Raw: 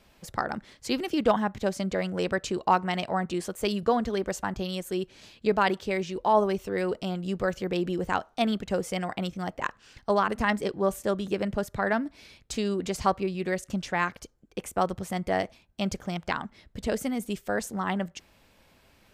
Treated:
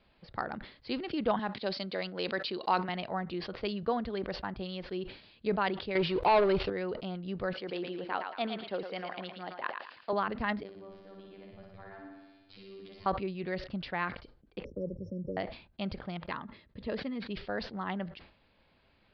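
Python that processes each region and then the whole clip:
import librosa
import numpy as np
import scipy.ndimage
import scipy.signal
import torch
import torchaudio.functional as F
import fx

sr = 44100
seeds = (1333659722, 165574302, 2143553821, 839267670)

y = fx.chain(x, sr, fx.highpass(hz=220.0, slope=12),
    fx.peak_eq(hz=4500.0, db=11.0, octaves=1.3), at=(1.39, 2.89))
y = fx.chain(y, sr, fx.leveller(passes=3),
    fx.peak_eq(hz=220.0, db=-8.0, octaves=0.49), at=(5.95, 6.7))
y = fx.chain(y, sr, fx.highpass(hz=290.0, slope=12),
    fx.echo_thinned(ms=113, feedback_pct=40, hz=560.0, wet_db=-5.5), at=(7.53, 10.13))
y = fx.chain(y, sr, fx.level_steps(step_db=21),
    fx.robotise(hz=97.1),
    fx.room_flutter(wall_m=10.1, rt60_s=1.3), at=(10.63, 13.06))
y = fx.chain(y, sr, fx.brickwall_bandstop(low_hz=600.0, high_hz=5300.0),
    fx.hum_notches(base_hz=50, count=3),
    fx.band_squash(depth_pct=40), at=(14.64, 15.37))
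y = fx.chain(y, sr, fx.notch_comb(f0_hz=750.0),
    fx.resample_linear(factor=3), at=(16.22, 17.31))
y = scipy.signal.sosfilt(scipy.signal.butter(16, 4800.0, 'lowpass', fs=sr, output='sos'), y)
y = fx.sustainer(y, sr, db_per_s=110.0)
y = y * 10.0 ** (-7.0 / 20.0)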